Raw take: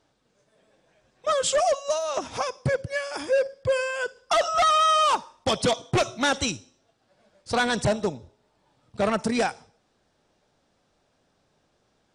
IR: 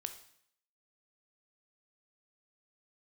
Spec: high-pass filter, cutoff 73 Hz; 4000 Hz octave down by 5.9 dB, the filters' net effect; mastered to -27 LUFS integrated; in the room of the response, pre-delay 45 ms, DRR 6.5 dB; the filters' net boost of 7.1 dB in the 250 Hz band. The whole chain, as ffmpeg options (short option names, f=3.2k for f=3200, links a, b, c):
-filter_complex "[0:a]highpass=73,equalizer=f=250:t=o:g=8.5,equalizer=f=4k:t=o:g=-8,asplit=2[a][b];[1:a]atrim=start_sample=2205,adelay=45[c];[b][c]afir=irnorm=-1:irlink=0,volume=-4.5dB[d];[a][d]amix=inputs=2:normalize=0,volume=-4.5dB"